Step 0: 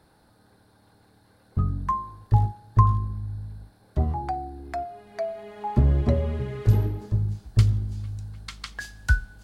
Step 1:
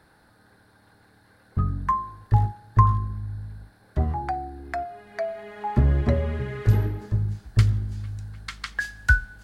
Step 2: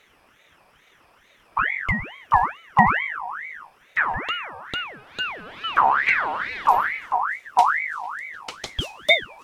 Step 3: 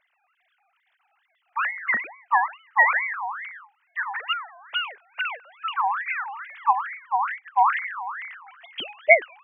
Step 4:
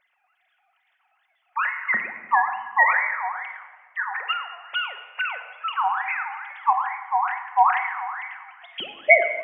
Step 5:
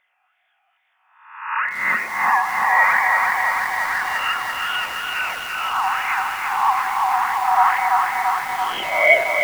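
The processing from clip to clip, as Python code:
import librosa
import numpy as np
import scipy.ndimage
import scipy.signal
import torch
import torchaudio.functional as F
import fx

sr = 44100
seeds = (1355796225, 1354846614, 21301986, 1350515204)

y1 = fx.peak_eq(x, sr, hz=1700.0, db=8.5, octaves=0.88)
y2 = fx.ring_lfo(y1, sr, carrier_hz=1500.0, swing_pct=45, hz=2.3)
y2 = y2 * 10.0 ** (3.5 / 20.0)
y3 = fx.sine_speech(y2, sr)
y3 = y3 * 10.0 ** (-2.0 / 20.0)
y4 = fx.room_shoebox(y3, sr, seeds[0], volume_m3=1700.0, walls='mixed', distance_m=1.0)
y5 = fx.spec_swells(y4, sr, rise_s=0.72)
y5 = fx.echo_crushed(y5, sr, ms=337, feedback_pct=80, bits=6, wet_db=-3)
y5 = y5 * 10.0 ** (-1.0 / 20.0)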